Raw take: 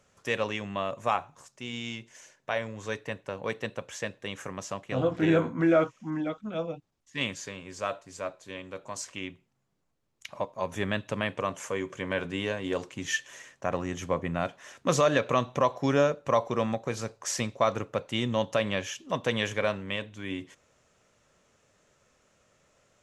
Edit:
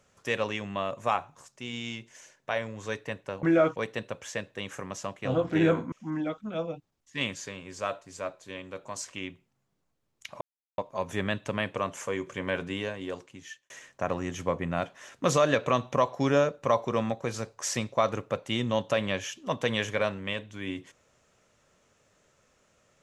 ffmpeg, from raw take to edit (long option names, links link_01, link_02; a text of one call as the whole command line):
ffmpeg -i in.wav -filter_complex "[0:a]asplit=6[link_01][link_02][link_03][link_04][link_05][link_06];[link_01]atrim=end=3.432[link_07];[link_02]atrim=start=5.588:end=5.922[link_08];[link_03]atrim=start=3.428:end=5.592[link_09];[link_04]atrim=start=5.918:end=10.41,asetpts=PTS-STARTPTS,afade=type=out:start_time=4.488:duration=0.004:curve=hsin,apad=pad_dur=0.37[link_10];[link_05]atrim=start=10.41:end=13.33,asetpts=PTS-STARTPTS,afade=type=in:duration=0.004:curve=hsin,afade=type=out:start_time=1.81:duration=1.11[link_11];[link_06]atrim=start=13.33,asetpts=PTS-STARTPTS,afade=type=in:duration=0.004:curve=hsin[link_12];[link_07][link_08]acrossfade=duration=0.004:curve1=hsin:curve2=hsin[link_13];[link_13][link_09]acrossfade=duration=0.004:curve1=hsin:curve2=hsin[link_14];[link_10][link_11][link_12]concat=n=3:v=0:a=1[link_15];[link_14][link_15]acrossfade=duration=0.004:curve1=hsin:curve2=hsin" out.wav